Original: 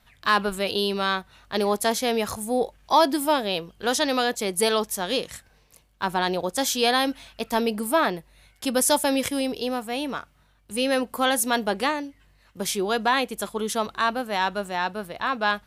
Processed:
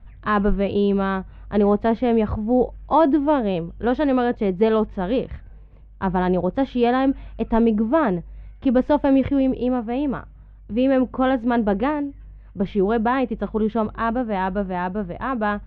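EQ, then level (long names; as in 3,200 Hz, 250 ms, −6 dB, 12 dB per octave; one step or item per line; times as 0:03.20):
low-pass filter 3,100 Hz 24 dB per octave
spectral tilt −4.5 dB per octave
0.0 dB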